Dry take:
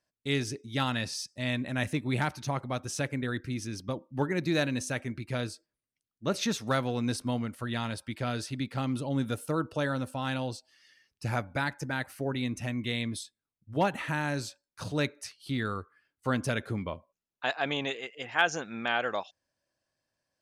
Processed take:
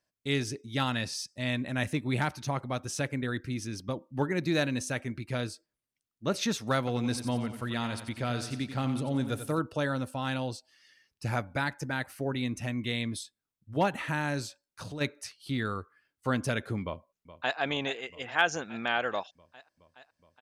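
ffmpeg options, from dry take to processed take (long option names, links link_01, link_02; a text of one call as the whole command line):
ffmpeg -i in.wav -filter_complex "[0:a]asettb=1/sr,asplit=3[link_01][link_02][link_03];[link_01]atrim=end=6.784[link_04];[link_02]atrim=start=6.78:end=9.59,asetpts=PTS-STARTPTS,afade=type=in:duration=0.004:curve=qsin,afade=type=out:start_time=2.806:duration=0.004:curve=qsin,aecho=1:1:90|180|270|360|450:0.316|0.149|0.0699|0.0328|0.0154,atrim=end_sample=123921[link_05];[link_03]atrim=start=9.586[link_06];[link_04][link_05]acrossfade=duration=0.004:curve1=hsin:curve2=qsin[link_07];[link_07][link_06]acrossfade=duration=0.004:curve1=qsin:curve2=hsin,asplit=3[link_08][link_09][link_10];[link_08]afade=type=out:start_time=14.46:duration=0.02[link_11];[link_09]acompressor=threshold=-37dB:ratio=4:attack=3.2:release=140:knee=1:detection=peak,afade=type=in:start_time=14.46:duration=0.02,afade=type=out:start_time=15:duration=0.02[link_12];[link_10]afade=type=in:start_time=15:duration=0.02[link_13];[link_11][link_12][link_13]amix=inputs=3:normalize=0,asplit=2[link_14][link_15];[link_15]afade=type=in:start_time=16.83:duration=0.01,afade=type=out:start_time=17.58:duration=0.01,aecho=0:1:420|840|1260|1680|2100|2520|2940|3360|3780|4200|4620|5040:0.177828|0.142262|0.11381|0.0910479|0.0728383|0.0582707|0.0466165|0.0372932|0.0298346|0.0238677|0.0190941|0.0152753[link_16];[link_14][link_16]amix=inputs=2:normalize=0" out.wav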